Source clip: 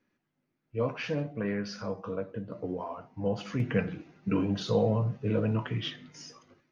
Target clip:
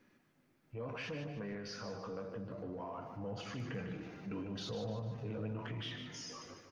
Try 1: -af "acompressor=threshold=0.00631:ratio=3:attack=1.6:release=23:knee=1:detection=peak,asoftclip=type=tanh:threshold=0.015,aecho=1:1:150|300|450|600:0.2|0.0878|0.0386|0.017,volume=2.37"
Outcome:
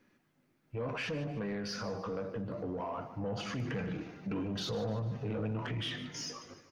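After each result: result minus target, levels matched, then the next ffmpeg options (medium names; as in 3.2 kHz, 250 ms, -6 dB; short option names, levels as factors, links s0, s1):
compression: peak gain reduction -7.5 dB; echo-to-direct -6 dB
-af "acompressor=threshold=0.00178:ratio=3:attack=1.6:release=23:knee=1:detection=peak,asoftclip=type=tanh:threshold=0.015,aecho=1:1:150|300|450|600:0.2|0.0878|0.0386|0.017,volume=2.37"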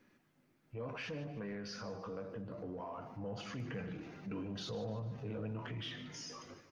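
echo-to-direct -6 dB
-af "acompressor=threshold=0.00178:ratio=3:attack=1.6:release=23:knee=1:detection=peak,asoftclip=type=tanh:threshold=0.015,aecho=1:1:150|300|450|600|750:0.398|0.175|0.0771|0.0339|0.0149,volume=2.37"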